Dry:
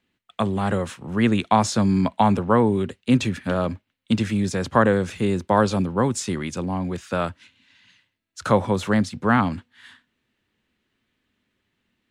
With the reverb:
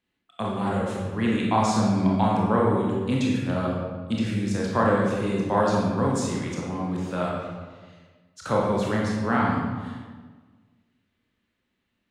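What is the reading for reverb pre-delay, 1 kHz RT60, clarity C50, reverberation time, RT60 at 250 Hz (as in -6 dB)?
22 ms, 1.4 s, 0.0 dB, 1.5 s, 1.8 s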